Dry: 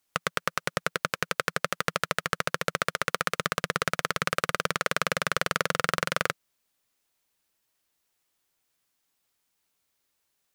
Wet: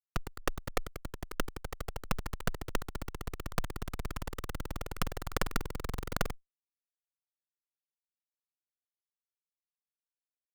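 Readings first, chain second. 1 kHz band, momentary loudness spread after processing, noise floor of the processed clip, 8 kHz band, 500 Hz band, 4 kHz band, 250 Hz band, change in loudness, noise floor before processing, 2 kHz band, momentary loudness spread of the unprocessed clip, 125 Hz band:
−12.0 dB, 6 LU, below −85 dBFS, −10.5 dB, −9.5 dB, −13.0 dB, −3.5 dB, −11.0 dB, −77 dBFS, −15.0 dB, 3 LU, −1.5 dB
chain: output level in coarse steps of 20 dB
comparator with hysteresis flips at −39.5 dBFS
harmonic generator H 2 −10 dB, 5 −12 dB, 6 −15 dB, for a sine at −39.5 dBFS
level +17.5 dB

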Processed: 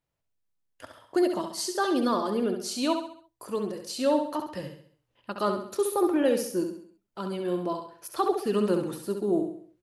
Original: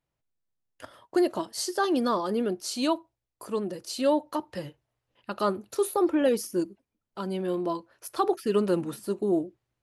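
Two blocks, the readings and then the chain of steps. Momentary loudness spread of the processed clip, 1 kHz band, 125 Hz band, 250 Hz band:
13 LU, 0.0 dB, −0.5 dB, 0.0 dB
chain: repeating echo 67 ms, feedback 43%, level −6.5 dB
level −1 dB

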